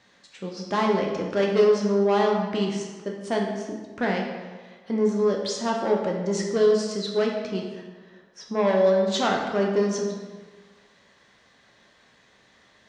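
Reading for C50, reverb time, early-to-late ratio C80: 3.5 dB, 1.4 s, 5.5 dB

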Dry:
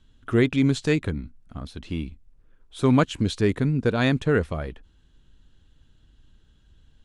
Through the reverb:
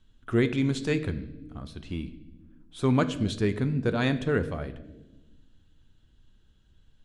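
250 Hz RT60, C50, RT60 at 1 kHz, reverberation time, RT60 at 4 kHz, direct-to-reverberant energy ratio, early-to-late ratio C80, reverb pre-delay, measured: 1.7 s, 14.5 dB, 0.80 s, 1.1 s, 0.85 s, 10.0 dB, 16.0 dB, 5 ms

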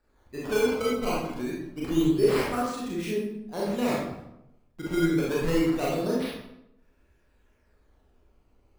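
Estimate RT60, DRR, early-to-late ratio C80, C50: 0.80 s, -6.0 dB, 4.0 dB, 0.0 dB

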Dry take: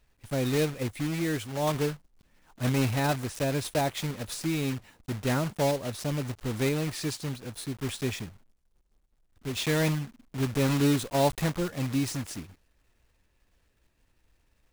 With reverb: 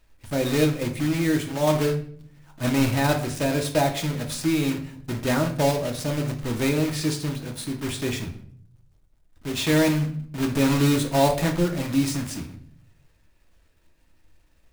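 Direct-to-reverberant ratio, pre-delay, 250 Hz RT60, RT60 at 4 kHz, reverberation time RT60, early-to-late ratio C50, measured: 3.5 dB, 3 ms, 0.85 s, 0.45 s, 0.60 s, 10.5 dB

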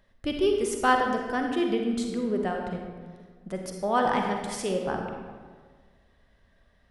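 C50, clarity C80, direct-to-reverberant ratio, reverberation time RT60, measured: 3.0 dB, 4.5 dB, 2.0 dB, 1.6 s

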